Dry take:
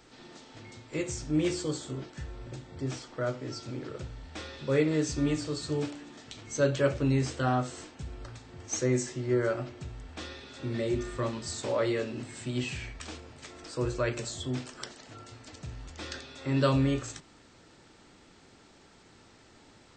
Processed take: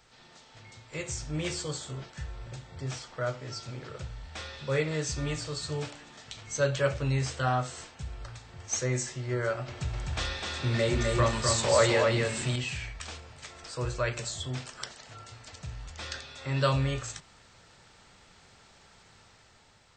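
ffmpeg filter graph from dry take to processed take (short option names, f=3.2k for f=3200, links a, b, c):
-filter_complex "[0:a]asettb=1/sr,asplit=3[a][b][c];[a]atrim=end=9.684[d];[b]atrim=start=9.68:end=12.56,asetpts=PTS-STARTPTS,afade=t=in:d=0.004:c=qsin,afade=t=out:st=2.876:d=0.004:c=qsin,acontrast=71,aecho=1:1:254:0.668,atrim=end_sample=127008[e];[c]atrim=start=12.556[f];[d][e]acrossfade=d=0.004:c1=hsin:c2=qsin[g];[g][f]acrossfade=d=0.004:c1=qsin:c2=hsin,equalizer=f=300:w=1.5:g=-14,dynaudnorm=f=190:g=9:m=4.5dB,volume=-2dB"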